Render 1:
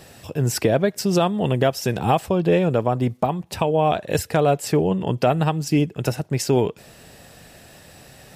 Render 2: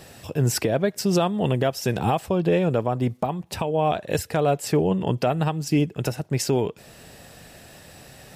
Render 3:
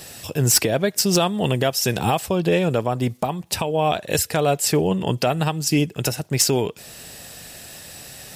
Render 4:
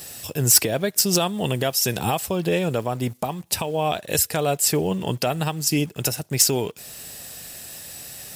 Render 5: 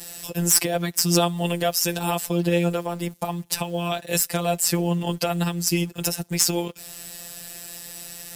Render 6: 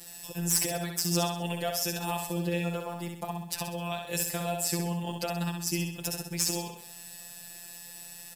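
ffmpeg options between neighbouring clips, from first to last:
-af "alimiter=limit=-11dB:level=0:latency=1:release=388"
-af "highshelf=f=2.7k:g=11.5,aeval=exprs='clip(val(0),-1,0.282)':c=same,volume=1dB"
-filter_complex "[0:a]crystalizer=i=1:c=0,asplit=2[a][b];[b]acrusher=bits=5:mix=0:aa=0.000001,volume=-8.5dB[c];[a][c]amix=inputs=2:normalize=0,volume=-6dB"
-filter_complex "[0:a]afftfilt=real='hypot(re,im)*cos(PI*b)':imag='0':win_size=1024:overlap=0.75,acrossover=split=330|1100[a][b][c];[c]asoftclip=type=tanh:threshold=-5.5dB[d];[a][b][d]amix=inputs=3:normalize=0,volume=3dB"
-af "aecho=1:1:65|130|195|260|325|390:0.562|0.264|0.124|0.0584|0.0274|0.0129,volume=-9dB"

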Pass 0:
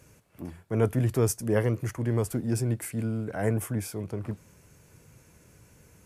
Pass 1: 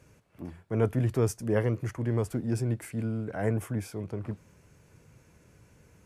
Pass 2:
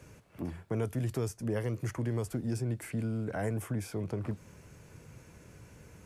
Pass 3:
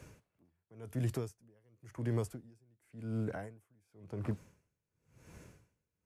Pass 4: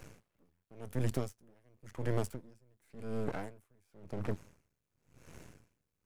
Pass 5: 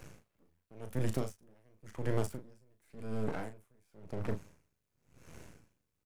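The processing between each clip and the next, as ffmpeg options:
-af "highshelf=f=7.5k:g=-11.5,volume=-1.5dB"
-filter_complex "[0:a]acrossover=split=100|3800[a][b][c];[a]acompressor=threshold=-48dB:ratio=4[d];[b]acompressor=threshold=-38dB:ratio=4[e];[c]acompressor=threshold=-52dB:ratio=4[f];[d][e][f]amix=inputs=3:normalize=0,volume=5dB"
-af "aeval=exprs='val(0)*pow(10,-36*(0.5-0.5*cos(2*PI*0.93*n/s))/20)':c=same"
-af "aeval=exprs='max(val(0),0)':c=same,volume=5.5dB"
-filter_complex "[0:a]asplit=2[a][b];[b]adelay=37,volume=-8dB[c];[a][c]amix=inputs=2:normalize=0"

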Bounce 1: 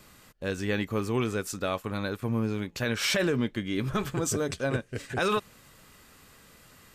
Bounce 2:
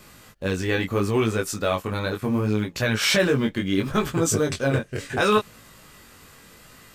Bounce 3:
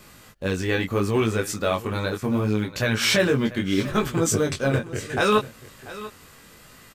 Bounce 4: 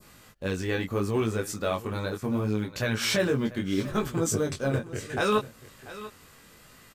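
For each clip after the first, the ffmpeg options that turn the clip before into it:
-filter_complex "[0:a]asplit=2[a][b];[b]acrusher=bits=5:mode=log:mix=0:aa=0.000001,volume=-11.5dB[c];[a][c]amix=inputs=2:normalize=0,flanger=delay=18:depth=4.1:speed=0.72,volume=7dB"
-af "aecho=1:1:690:0.15"
-af "adynamicequalizer=threshold=0.0112:dfrequency=2500:dqfactor=0.85:tfrequency=2500:tqfactor=0.85:attack=5:release=100:ratio=0.375:range=2.5:mode=cutabove:tftype=bell,volume=-4.5dB"

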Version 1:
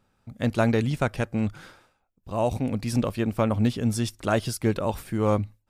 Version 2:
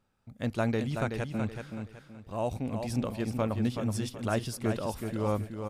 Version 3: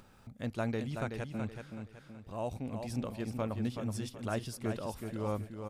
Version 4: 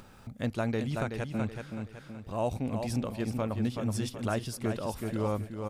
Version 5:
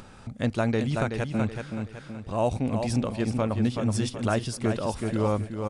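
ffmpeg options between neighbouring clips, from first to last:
-af "aecho=1:1:376|752|1128|1504:0.473|0.151|0.0485|0.0155,volume=-7dB"
-af "acompressor=mode=upward:threshold=-37dB:ratio=2.5,volume=-5.5dB"
-af "alimiter=level_in=1.5dB:limit=-24dB:level=0:latency=1:release=433,volume=-1.5dB,volume=6.5dB"
-af "aresample=22050,aresample=44100,volume=5.5dB"

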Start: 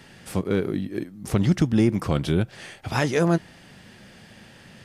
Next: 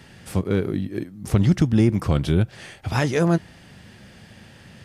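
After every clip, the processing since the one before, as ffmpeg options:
-af "equalizer=f=76:t=o:w=1.6:g=7.5"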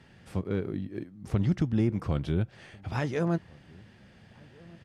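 -filter_complex "[0:a]aemphasis=mode=reproduction:type=50kf,asplit=2[a][b];[b]adelay=1399,volume=-25dB,highshelf=f=4k:g=-31.5[c];[a][c]amix=inputs=2:normalize=0,volume=-8.5dB"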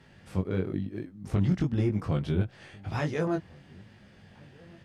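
-af "flanger=delay=19:depth=2.6:speed=0.98,volume=3.5dB"

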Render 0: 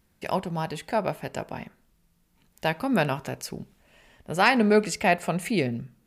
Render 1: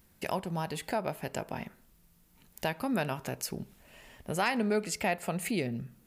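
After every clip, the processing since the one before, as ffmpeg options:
-af "highshelf=f=11k:g=10.5,acompressor=threshold=-37dB:ratio=2,volume=2dB"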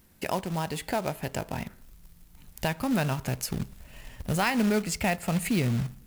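-af "asubboost=boost=5.5:cutoff=140,acrusher=bits=3:mode=log:mix=0:aa=0.000001,equalizer=f=280:t=o:w=0.61:g=3,volume=3dB"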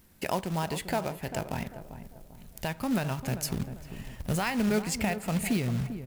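-filter_complex "[0:a]alimiter=limit=-17.5dB:level=0:latency=1:release=442,asplit=2[a][b];[b]adelay=395,lowpass=f=1k:p=1,volume=-10dB,asplit=2[c][d];[d]adelay=395,lowpass=f=1k:p=1,volume=0.42,asplit=2[e][f];[f]adelay=395,lowpass=f=1k:p=1,volume=0.42,asplit=2[g][h];[h]adelay=395,lowpass=f=1k:p=1,volume=0.42[i];[c][e][g][i]amix=inputs=4:normalize=0[j];[a][j]amix=inputs=2:normalize=0"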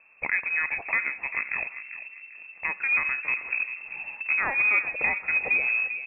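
-af "lowpass=f=2.3k:t=q:w=0.5098,lowpass=f=2.3k:t=q:w=0.6013,lowpass=f=2.3k:t=q:w=0.9,lowpass=f=2.3k:t=q:w=2.563,afreqshift=-2700,volume=3.5dB"

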